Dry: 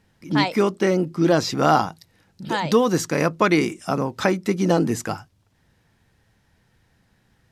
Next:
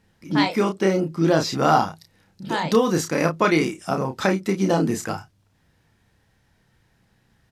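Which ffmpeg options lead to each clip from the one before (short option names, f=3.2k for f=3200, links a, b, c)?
-filter_complex "[0:a]asplit=2[a][b];[b]adelay=31,volume=-5.5dB[c];[a][c]amix=inputs=2:normalize=0,volume=-1.5dB"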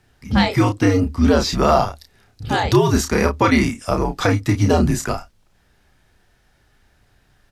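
-filter_complex "[0:a]asplit=2[a][b];[b]alimiter=limit=-11dB:level=0:latency=1:release=116,volume=2dB[c];[a][c]amix=inputs=2:normalize=0,afreqshift=-87,volume=-2dB"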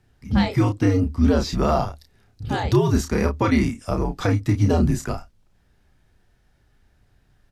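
-af "lowshelf=f=390:g=7.5,volume=-8dB"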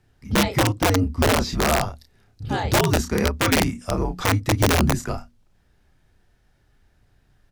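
-af "bandreject=f=60:t=h:w=6,bandreject=f=120:t=h:w=6,bandreject=f=180:t=h:w=6,bandreject=f=240:t=h:w=6,aeval=exprs='(mod(3.76*val(0)+1,2)-1)/3.76':c=same"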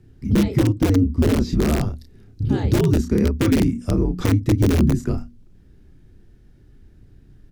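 -af "lowshelf=f=490:t=q:w=1.5:g=12,acompressor=threshold=-21dB:ratio=2"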